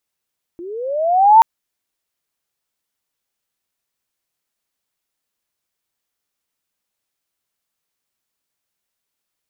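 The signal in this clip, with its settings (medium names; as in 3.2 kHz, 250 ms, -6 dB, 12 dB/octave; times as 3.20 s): sweep linear 330 Hz -> 920 Hz -29 dBFS -> -3 dBFS 0.83 s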